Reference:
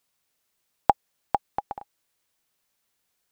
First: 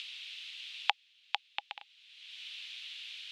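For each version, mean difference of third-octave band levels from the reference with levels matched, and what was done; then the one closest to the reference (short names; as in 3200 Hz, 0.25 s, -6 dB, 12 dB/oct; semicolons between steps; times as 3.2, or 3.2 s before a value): 10.0 dB: in parallel at +2.5 dB: upward compressor, threshold -30 dBFS; on the sum: Butterworth band-pass 3100 Hz, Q 2.3; gain +14 dB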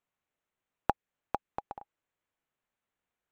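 2.5 dB: Wiener smoothing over 9 samples; dynamic EQ 790 Hz, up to -6 dB, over -33 dBFS, Q 1; gain -5.5 dB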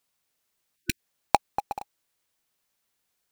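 7.5 dB: in parallel at -8 dB: companded quantiser 2-bit; on the sum: spectral delete 0.76–0.99, 360–1500 Hz; gain -1.5 dB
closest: second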